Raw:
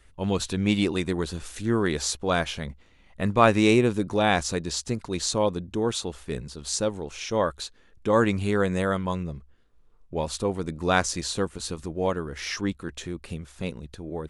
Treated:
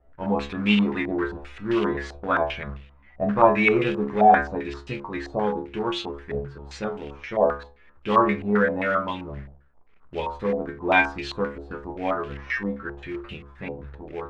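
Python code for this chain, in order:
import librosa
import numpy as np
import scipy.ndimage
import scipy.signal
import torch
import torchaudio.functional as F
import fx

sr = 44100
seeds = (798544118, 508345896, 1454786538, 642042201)

y = fx.stiff_resonator(x, sr, f0_hz=68.0, decay_s=0.45, stiffness=0.002)
y = fx.quant_float(y, sr, bits=2)
y = fx.filter_held_lowpass(y, sr, hz=7.6, low_hz=700.0, high_hz=2800.0)
y = y * librosa.db_to_amplitude(8.5)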